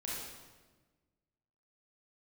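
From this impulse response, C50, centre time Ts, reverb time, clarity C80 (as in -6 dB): -2.0 dB, 92 ms, 1.3 s, 1.0 dB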